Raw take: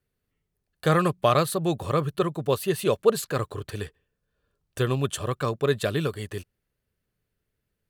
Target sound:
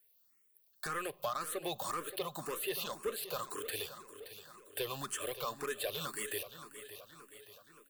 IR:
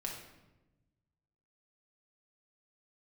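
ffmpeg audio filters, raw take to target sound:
-filter_complex "[0:a]aemphasis=mode=production:type=riaa,acrossover=split=3800[link_01][link_02];[link_02]acompressor=threshold=-33dB:ratio=4:attack=1:release=60[link_03];[link_01][link_03]amix=inputs=2:normalize=0,lowshelf=frequency=190:gain=-9,acompressor=threshold=-30dB:ratio=6,asoftclip=type=tanh:threshold=-29.5dB,aecho=1:1:574|1148|1722|2296|2870|3444:0.251|0.136|0.0732|0.0396|0.0214|0.0115,asplit=2[link_04][link_05];[1:a]atrim=start_sample=2205,asetrate=52920,aresample=44100[link_06];[link_05][link_06]afir=irnorm=-1:irlink=0,volume=-17dB[link_07];[link_04][link_07]amix=inputs=2:normalize=0,asplit=2[link_08][link_09];[link_09]afreqshift=1.9[link_10];[link_08][link_10]amix=inputs=2:normalize=1,volume=1dB"

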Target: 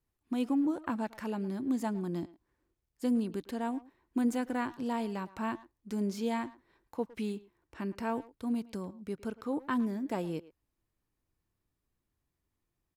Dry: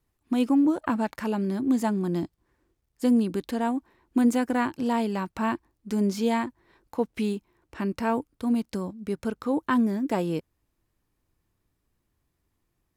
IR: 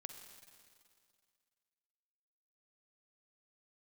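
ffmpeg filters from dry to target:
-filter_complex "[0:a]asplit=2[link_01][link_02];[link_02]adelay=110,highpass=300,lowpass=3400,asoftclip=type=hard:threshold=-22dB,volume=-17dB[link_03];[link_01][link_03]amix=inputs=2:normalize=0,volume=-8dB"

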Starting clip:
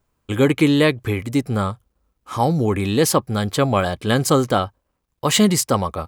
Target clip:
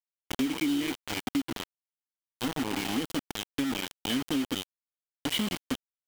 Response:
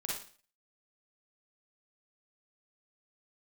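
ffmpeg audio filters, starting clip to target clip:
-filter_complex "[0:a]asplit=3[link_01][link_02][link_03];[link_01]bandpass=frequency=270:width_type=q:width=8,volume=0dB[link_04];[link_02]bandpass=frequency=2290:width_type=q:width=8,volume=-6dB[link_05];[link_03]bandpass=frequency=3010:width_type=q:width=8,volume=-9dB[link_06];[link_04][link_05][link_06]amix=inputs=3:normalize=0,asplit=4[link_07][link_08][link_09][link_10];[link_08]adelay=116,afreqshift=49,volume=-15dB[link_11];[link_09]adelay=232,afreqshift=98,volume=-25.2dB[link_12];[link_10]adelay=348,afreqshift=147,volume=-35.3dB[link_13];[link_07][link_11][link_12][link_13]amix=inputs=4:normalize=0,acrusher=bits=4:mix=0:aa=0.000001,acompressor=threshold=-30dB:ratio=4,equalizer=frequency=3100:width_type=o:width=0.27:gain=5.5,volume=2.5dB"

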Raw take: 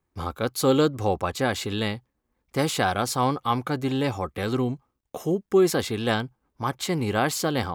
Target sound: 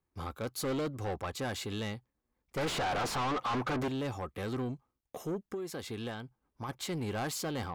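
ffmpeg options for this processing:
ffmpeg -i in.wav -filter_complex "[0:a]asettb=1/sr,asplit=3[link_01][link_02][link_03];[link_01]atrim=end=2.574[link_04];[link_02]atrim=start=2.57:end=3.88,asetpts=PTS-STARTPTS,afade=type=in:duration=0.004:curve=qsin,afade=type=out:start_time=1.306:duration=0.004:curve=qsin,asplit=2[link_05][link_06];[link_06]highpass=frequency=720:poles=1,volume=33dB,asoftclip=type=tanh:threshold=-8dB[link_07];[link_05][link_07]amix=inputs=2:normalize=0,lowpass=frequency=1000:poles=1,volume=-6dB[link_08];[link_03]atrim=start=3.876[link_09];[link_04][link_08]acrossfade=duration=0.004:curve1=hsin:curve2=qsin[link_10];[link_10][link_09]acrossfade=duration=0.004:curve1=qsin:curve2=hsin,asettb=1/sr,asplit=3[link_11][link_12][link_13];[link_11]atrim=end=5.384[link_14];[link_12]atrim=start=5.38:end=6.69,asetpts=PTS-STARTPTS,afade=type=in:duration=0.004:curve=qsin,afade=type=out:start_time=1.306:duration=0.004:curve=qsin,acompressor=threshold=-27dB:ratio=12[link_15];[link_13]atrim=start=6.686[link_16];[link_14][link_15]acrossfade=duration=0.004:curve1=hsin:curve2=qsin[link_17];[link_17][link_16]acrossfade=duration=0.004:curve1=qsin:curve2=hsin,asoftclip=type=tanh:threshold=-23dB,volume=-7dB" out.wav

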